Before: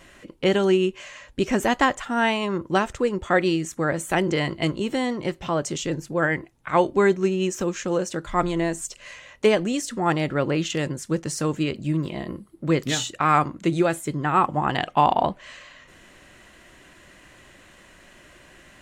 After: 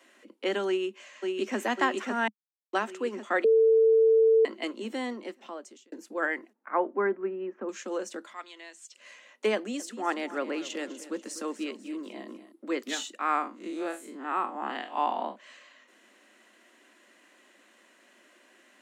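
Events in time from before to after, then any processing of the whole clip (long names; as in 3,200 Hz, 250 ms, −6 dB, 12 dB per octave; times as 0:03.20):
0:00.67–0:01.57: delay throw 550 ms, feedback 60%, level −3 dB
0:02.28–0:02.73: silence
0:03.44–0:04.45: beep over 447 Hz −8.5 dBFS
0:05.09–0:05.92: fade out
0:06.53–0:07.69: low-pass filter 1,800 Hz 24 dB per octave
0:08.33–0:08.95: resonant band-pass 3,400 Hz, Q 1.1
0:09.55–0:12.52: repeating echo 246 ms, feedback 48%, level −14.5 dB
0:13.19–0:15.36: spectrum smeared in time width 99 ms
whole clip: Butterworth high-pass 210 Hz 96 dB per octave; dynamic equaliser 1,500 Hz, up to +4 dB, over −31 dBFS, Q 0.82; level −9 dB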